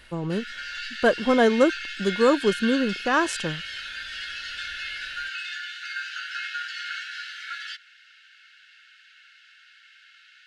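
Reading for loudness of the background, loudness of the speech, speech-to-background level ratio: -32.5 LUFS, -23.5 LUFS, 9.0 dB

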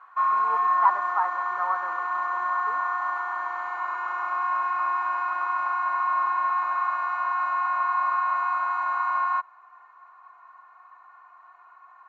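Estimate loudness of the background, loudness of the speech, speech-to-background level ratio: -25.5 LUFS, -29.0 LUFS, -3.5 dB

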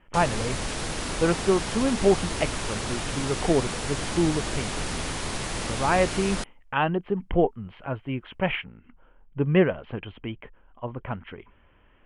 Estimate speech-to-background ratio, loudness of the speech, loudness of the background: 3.5 dB, -27.0 LUFS, -30.5 LUFS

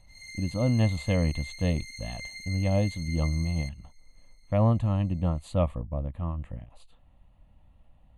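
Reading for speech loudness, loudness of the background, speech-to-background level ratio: -28.5 LUFS, -40.5 LUFS, 12.0 dB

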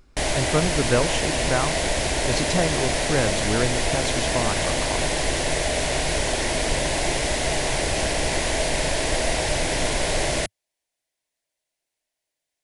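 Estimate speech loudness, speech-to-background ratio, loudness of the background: -27.5 LUFS, -4.0 dB, -23.5 LUFS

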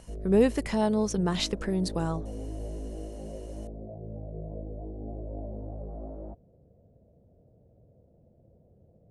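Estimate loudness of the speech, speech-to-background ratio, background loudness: -27.5 LUFS, 13.0 dB, -40.5 LUFS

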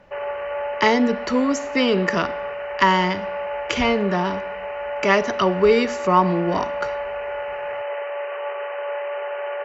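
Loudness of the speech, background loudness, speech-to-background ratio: -20.5 LUFS, -28.5 LUFS, 8.0 dB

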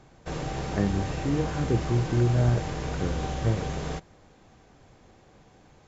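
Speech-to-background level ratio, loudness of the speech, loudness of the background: 5.0 dB, -28.0 LUFS, -33.0 LUFS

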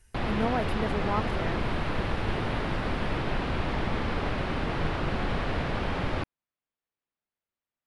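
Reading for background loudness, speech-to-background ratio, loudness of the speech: -30.5 LUFS, -3.0 dB, -33.5 LUFS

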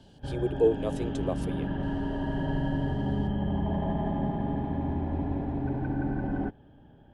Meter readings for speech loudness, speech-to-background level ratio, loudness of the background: -30.5 LUFS, 0.5 dB, -31.0 LUFS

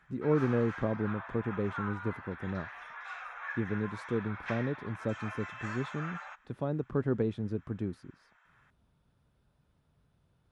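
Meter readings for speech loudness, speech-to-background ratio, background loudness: -34.5 LUFS, 8.0 dB, -42.5 LUFS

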